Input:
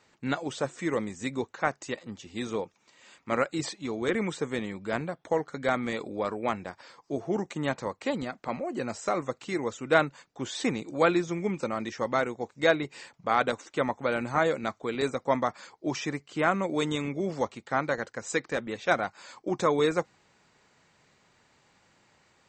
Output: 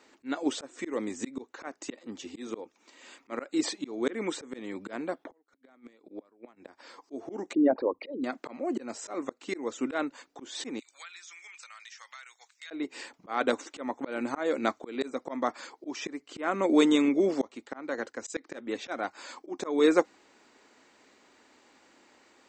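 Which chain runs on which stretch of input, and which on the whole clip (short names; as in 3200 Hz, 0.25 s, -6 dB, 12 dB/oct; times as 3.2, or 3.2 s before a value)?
5.24–6.56 low-pass opened by the level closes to 1900 Hz, open at -23.5 dBFS + flipped gate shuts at -23 dBFS, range -34 dB
7.53–8.24 formant sharpening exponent 3 + brick-wall FIR low-pass 5400 Hz
10.79–12.71 Bessel high-pass 2300 Hz, order 4 + compressor 4:1, threshold -48 dBFS
17.67–18.34 compressor 2:1, threshold -31 dBFS + three-band expander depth 100%
whole clip: resonant low shelf 200 Hz -10.5 dB, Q 3; auto swell 0.304 s; gain +3 dB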